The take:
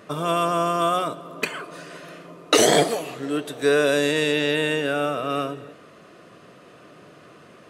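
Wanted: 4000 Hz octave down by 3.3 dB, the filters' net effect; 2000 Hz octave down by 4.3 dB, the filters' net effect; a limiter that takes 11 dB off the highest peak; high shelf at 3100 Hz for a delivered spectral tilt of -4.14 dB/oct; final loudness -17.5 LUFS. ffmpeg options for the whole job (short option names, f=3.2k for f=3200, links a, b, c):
-af "equalizer=f=2k:t=o:g=-6,highshelf=f=3.1k:g=3,equalizer=f=4k:t=o:g=-4,volume=9dB,alimiter=limit=-7dB:level=0:latency=1"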